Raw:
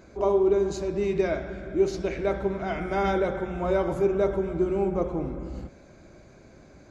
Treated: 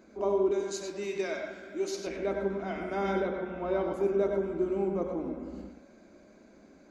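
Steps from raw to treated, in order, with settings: 0.51–2.07 s: tilt EQ +3.5 dB/octave; 3.22–3.94 s: low-pass 5 kHz 24 dB/octave; resonant low shelf 170 Hz -8.5 dB, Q 3; reverberation RT60 0.30 s, pre-delay 92 ms, DRR 4.5 dB; trim -7 dB

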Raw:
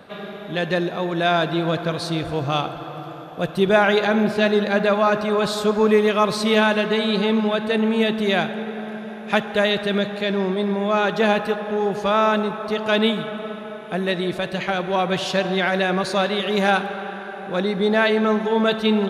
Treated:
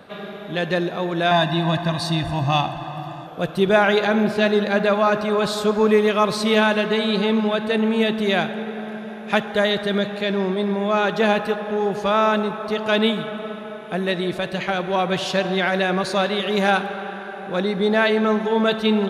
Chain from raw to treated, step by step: 1.31–3.27 s: comb 1.1 ms, depth 93%; 9.50–10.03 s: band-stop 2.6 kHz, Q 7.1

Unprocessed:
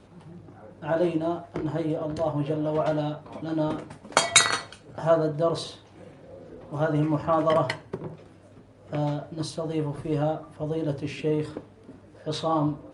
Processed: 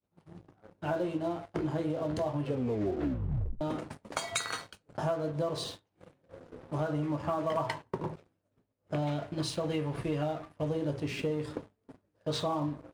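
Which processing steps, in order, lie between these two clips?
compression 12:1, threshold -28 dBFS, peak gain reduction 17 dB; 9.02–10.69 s: dynamic bell 2.4 kHz, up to +8 dB, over -59 dBFS, Q 1.2; expander -40 dBFS; 2.42 s: tape stop 1.19 s; 7.57–8.11 s: peaking EQ 950 Hz +8.5 dB 0.51 oct; waveshaping leveller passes 2; trim -7.5 dB

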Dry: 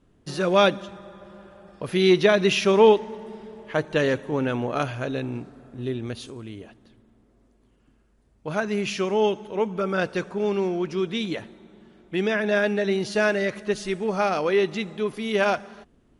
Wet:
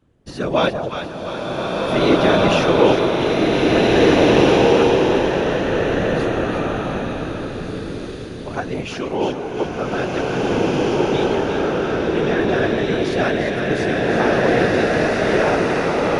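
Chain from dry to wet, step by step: treble shelf 6 kHz -4.5 dB; on a send: two-band feedback delay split 860 Hz, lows 195 ms, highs 349 ms, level -7.5 dB; on the sum: whisper effect; swelling reverb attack 1980 ms, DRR -5 dB

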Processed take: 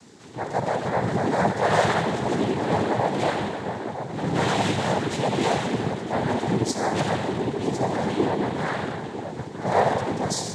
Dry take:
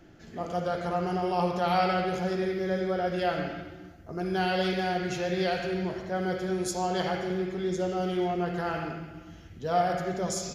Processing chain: filtered feedback delay 957 ms, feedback 60%, low-pass 2.4 kHz, level -9.5 dB; added noise blue -55 dBFS; noise-vocoded speech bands 6; trim +5 dB

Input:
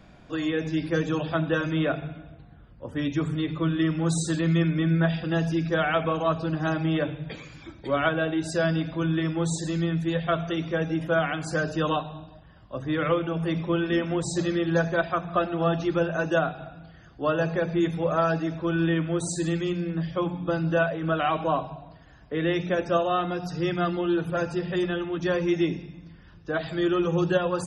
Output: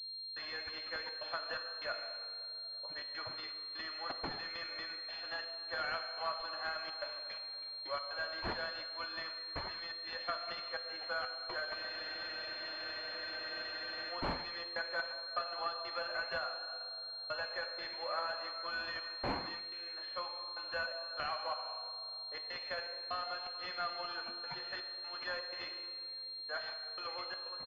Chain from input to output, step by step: fade out at the end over 0.59 s; high-pass 540 Hz 24 dB/octave; gate with hold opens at -37 dBFS; differentiator; compression 3:1, threshold -44 dBFS, peak gain reduction 11 dB; trance gate "xx.xxxxxx.xxx..x" 124 bpm -60 dB; echo from a far wall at 150 m, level -28 dB; on a send at -4 dB: reverberation RT60 3.0 s, pre-delay 3 ms; on the sum: spectral freeze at 11.77 s, 2.34 s; class-D stage that switches slowly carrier 4.2 kHz; trim +9.5 dB

